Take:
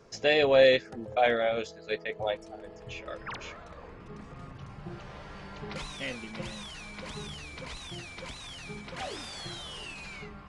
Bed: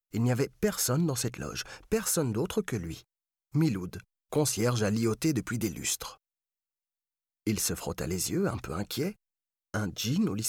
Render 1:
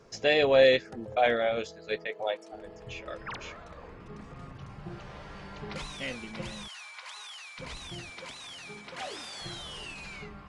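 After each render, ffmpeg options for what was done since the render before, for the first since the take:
-filter_complex "[0:a]asettb=1/sr,asplit=3[a][b][c];[a]atrim=end=2.074[d];[b]atrim=start=2.07:end=2.52,asetpts=PTS-STARTPTS,afade=t=in:d=0.004:c=qsin,afade=t=out:st=0.446:d=0.004:c=qsin,highpass=330[e];[c]atrim=start=2.516[f];[d][e]acrossfade=d=0.004:c1=hsin:c2=qsin[g];[g][f]acrossfade=d=0.004:c1=qsin:c2=hsin,asplit=3[h][i][j];[h]afade=t=out:st=6.67:d=0.02[k];[i]highpass=f=840:w=0.5412,highpass=f=840:w=1.3066,afade=t=in:st=6.67:d=0.02,afade=t=out:st=7.58:d=0.02[l];[j]afade=t=in:st=7.58:d=0.02[m];[k][l][m]amix=inputs=3:normalize=0,asettb=1/sr,asplit=3[n][o][p];[n]atrim=end=8.104[q];[o]atrim=start=8.1:end=9.41,asetpts=PTS-STARTPTS,afade=t=in:d=0.004:c=qsin,afade=t=out:st=1.306:d=0.004:c=qsin,highpass=f=360:p=1[r];[p]atrim=start=9.406[s];[q][r]acrossfade=d=0.004:c1=hsin:c2=qsin[t];[t][s]acrossfade=d=0.004:c1=qsin:c2=hsin"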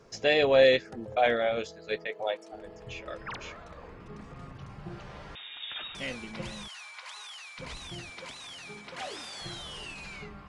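-filter_complex "[0:a]asettb=1/sr,asplit=3[a][b][c];[a]atrim=end=5.354[d];[b]atrim=start=5.35:end=5.95,asetpts=PTS-STARTPTS,afade=t=in:d=0.004:c=qsin,afade=t=out:st=0.596:d=0.004:c=qsin,lowpass=f=3.2k:t=q:w=0.5098,lowpass=f=3.2k:t=q:w=0.6013,lowpass=f=3.2k:t=q:w=0.9,lowpass=f=3.2k:t=q:w=2.563,afreqshift=-3800[e];[c]atrim=start=5.946[f];[d][e]acrossfade=d=0.004:c1=hsin:c2=qsin[g];[g][f]acrossfade=d=0.004:c1=qsin:c2=hsin"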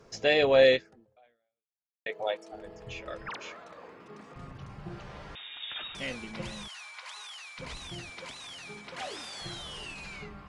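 -filter_complex "[0:a]asettb=1/sr,asplit=3[a][b][c];[a]atrim=end=3.294[d];[b]atrim=start=3.29:end=4.36,asetpts=PTS-STARTPTS,afade=t=in:d=0.004:c=qsin,afade=t=out:st=1.066:d=0.004:c=qsin,highpass=250[e];[c]atrim=start=4.356[f];[d][e]acrossfade=d=0.004:c1=hsin:c2=qsin[g];[g][f]acrossfade=d=0.004:c1=qsin:c2=hsin,asplit=2[h][i];[h]atrim=end=2.06,asetpts=PTS-STARTPTS,afade=t=out:st=0.72:d=1.34:c=exp[j];[i]atrim=start=2.06,asetpts=PTS-STARTPTS,afade=t=in:d=0.004:c=hsin[k];[j][k]concat=n=2:v=0:a=1"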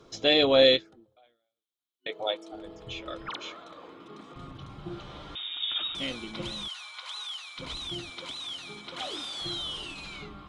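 -af "superequalizer=6b=2.24:10b=1.41:11b=0.631:13b=2.82"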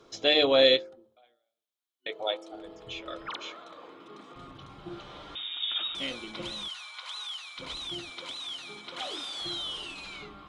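-af "bass=f=250:g=-7,treble=f=4k:g=-1,bandreject=f=75.21:t=h:w=4,bandreject=f=150.42:t=h:w=4,bandreject=f=225.63:t=h:w=4,bandreject=f=300.84:t=h:w=4,bandreject=f=376.05:t=h:w=4,bandreject=f=451.26:t=h:w=4,bandreject=f=526.47:t=h:w=4,bandreject=f=601.68:t=h:w=4,bandreject=f=676.89:t=h:w=4,bandreject=f=752.1:t=h:w=4,bandreject=f=827.31:t=h:w=4,bandreject=f=902.52:t=h:w=4,bandreject=f=977.73:t=h:w=4,bandreject=f=1.05294k:t=h:w=4,bandreject=f=1.12815k:t=h:w=4,bandreject=f=1.20336k:t=h:w=4,bandreject=f=1.27857k:t=h:w=4"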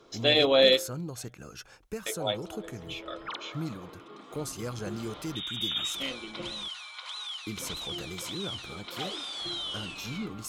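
-filter_complex "[1:a]volume=-9dB[a];[0:a][a]amix=inputs=2:normalize=0"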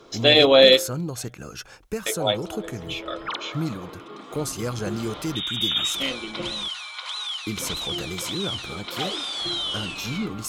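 -af "volume=7.5dB,alimiter=limit=-3dB:level=0:latency=1"

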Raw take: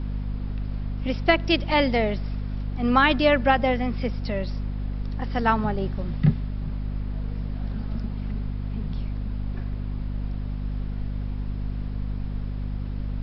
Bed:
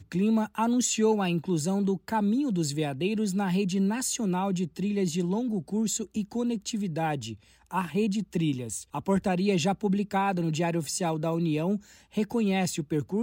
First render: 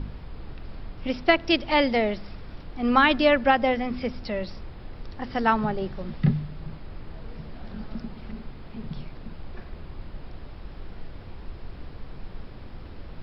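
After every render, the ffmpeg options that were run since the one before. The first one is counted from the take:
-af "bandreject=f=50:t=h:w=4,bandreject=f=100:t=h:w=4,bandreject=f=150:t=h:w=4,bandreject=f=200:t=h:w=4,bandreject=f=250:t=h:w=4"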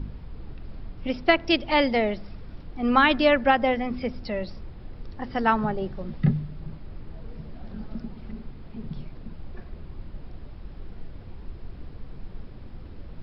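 -af "afftdn=nr=6:nf=-42"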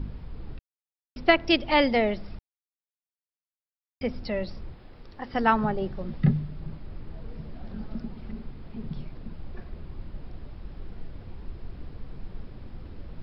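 -filter_complex "[0:a]asettb=1/sr,asplit=3[a][b][c];[a]atrim=end=4.754[d];[b]atrim=start=4.75:end=5.34,asetpts=PTS-STARTPTS,afade=t=in:d=0.004:c=qsin,afade=t=out:st=0.586:d=0.004:c=qsin,lowshelf=f=280:g=-10[e];[c]atrim=start=5.336[f];[d][e]acrossfade=d=0.004:c1=hsin:c2=qsin[g];[g][f]acrossfade=d=0.004:c1=qsin:c2=hsin,asplit=5[h][i][j][k][l];[h]atrim=end=0.59,asetpts=PTS-STARTPTS,afade=t=out:st=0.586:d=0.004:c=hsin[m];[i]atrim=start=0.59:end=1.16,asetpts=PTS-STARTPTS,volume=0[n];[j]atrim=start=1.16:end=2.39,asetpts=PTS-STARTPTS,afade=t=in:d=0.004:c=hsin,afade=t=out:st=1.226:d=0.004:c=hsin[o];[k]atrim=start=2.39:end=4.01,asetpts=PTS-STARTPTS,volume=0[p];[l]atrim=start=4.01,asetpts=PTS-STARTPTS,afade=t=in:d=0.004:c=hsin[q];[m][n][o][p][q]concat=n=5:v=0:a=1"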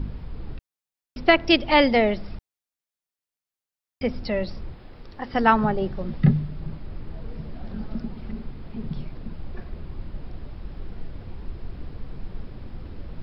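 -af "volume=4dB,alimiter=limit=-2dB:level=0:latency=1"

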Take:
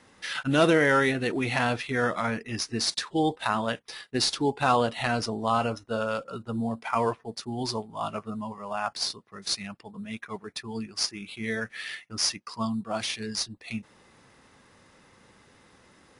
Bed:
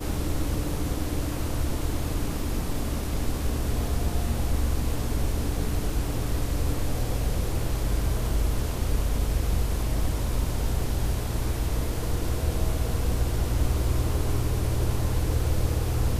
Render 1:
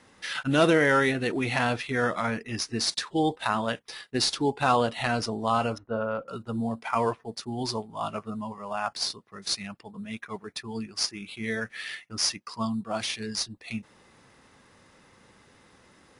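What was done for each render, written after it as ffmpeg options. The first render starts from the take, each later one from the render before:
-filter_complex "[0:a]asettb=1/sr,asplit=3[a][b][c];[a]atrim=end=5.784[d];[b]atrim=start=5.78:end=6.28,asetpts=PTS-STARTPTS,afade=t=in:d=0.004:c=qsin,afade=t=out:st=0.496:d=0.004:c=qsin,lowpass=1.5k[e];[c]atrim=start=6.276[f];[d][e]acrossfade=d=0.004:c1=hsin:c2=qsin[g];[g][f]acrossfade=d=0.004:c1=qsin:c2=hsin"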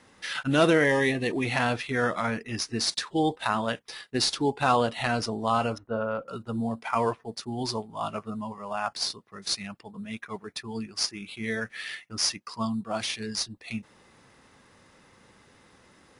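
-filter_complex "[0:a]asettb=1/sr,asplit=3[a][b][c];[a]atrim=end=0.844[d];[b]atrim=start=0.84:end=1.45,asetpts=PTS-STARTPTS,afade=t=in:d=0.004:c=qsin,afade=t=out:st=0.606:d=0.004:c=qsin,asuperstop=centerf=1400:order=12:qfactor=3.9[e];[c]atrim=start=1.446[f];[d][e]acrossfade=d=0.004:c1=hsin:c2=qsin[g];[g][f]acrossfade=d=0.004:c1=qsin:c2=hsin"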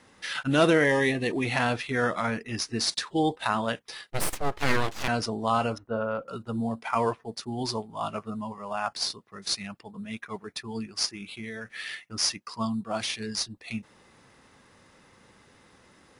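-filter_complex "[0:a]asettb=1/sr,asplit=3[a][b][c];[a]atrim=end=4.104[d];[b]atrim=start=4.1:end=5.08,asetpts=PTS-STARTPTS,afade=t=in:d=0.004:c=qsin,afade=t=out:st=0.976:d=0.004:c=qsin,aeval=exprs='abs(val(0))':c=same[e];[c]atrim=start=5.076[f];[d][e]acrossfade=d=0.004:c1=hsin:c2=qsin[g];[g][f]acrossfade=d=0.004:c1=qsin:c2=hsin,asettb=1/sr,asplit=3[h][i][j];[h]atrim=end=11.124[k];[i]atrim=start=11.12:end=11.73,asetpts=PTS-STARTPTS,afade=t=in:d=0.004:c=qsin,afade=t=out:st=0.606:d=0.004:c=qsin,acompressor=threshold=-33dB:ratio=6:attack=3.2:release=140:knee=1:detection=peak[l];[j]atrim=start=11.726[m];[k][l]acrossfade=d=0.004:c1=hsin:c2=qsin[n];[n][m]acrossfade=d=0.004:c1=qsin:c2=hsin"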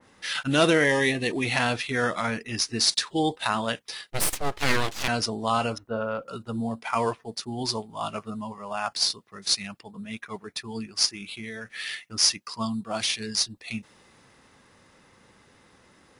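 -af "adynamicequalizer=threshold=0.00794:dfrequency=2200:dqfactor=0.7:tfrequency=2200:tqfactor=0.7:attack=5:release=100:ratio=0.375:range=3:mode=boostabove:tftype=highshelf"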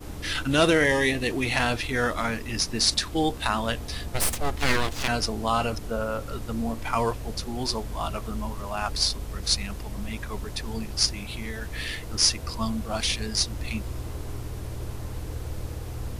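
-filter_complex "[1:a]volume=-9dB[a];[0:a][a]amix=inputs=2:normalize=0"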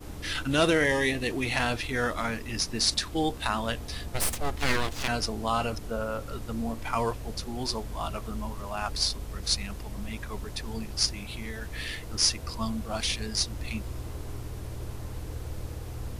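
-af "volume=-3dB"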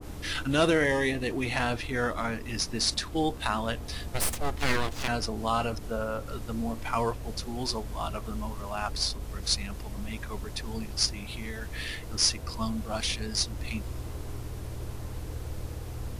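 -af "adynamicequalizer=threshold=0.0112:dfrequency=1800:dqfactor=0.7:tfrequency=1800:tqfactor=0.7:attack=5:release=100:ratio=0.375:range=2.5:mode=cutabove:tftype=highshelf"

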